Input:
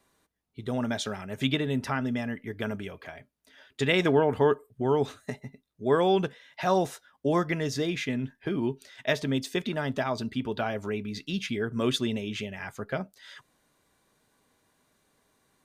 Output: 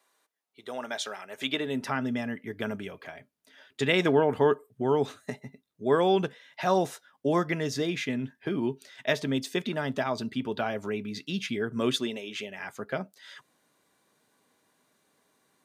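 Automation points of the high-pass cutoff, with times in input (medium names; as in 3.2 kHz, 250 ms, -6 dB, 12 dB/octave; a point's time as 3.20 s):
1.33 s 540 Hz
2.01 s 130 Hz
11.87 s 130 Hz
12.21 s 430 Hz
12.86 s 160 Hz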